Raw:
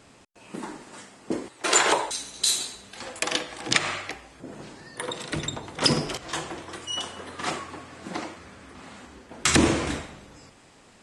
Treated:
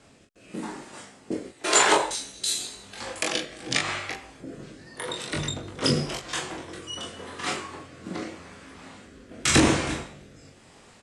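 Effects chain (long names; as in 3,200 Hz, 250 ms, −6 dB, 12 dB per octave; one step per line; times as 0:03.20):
ambience of single reflections 22 ms −3.5 dB, 41 ms −6 dB
rotating-speaker cabinet horn 0.9 Hz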